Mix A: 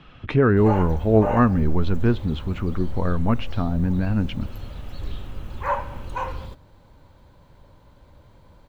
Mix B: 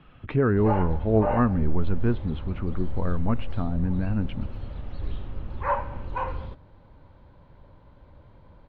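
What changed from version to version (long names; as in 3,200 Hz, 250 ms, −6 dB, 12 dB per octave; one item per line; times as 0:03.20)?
speech −4.0 dB
master: add high-frequency loss of the air 290 metres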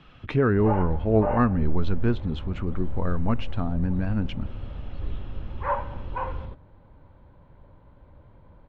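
speech: remove high-frequency loss of the air 310 metres
background: add high-frequency loss of the air 230 metres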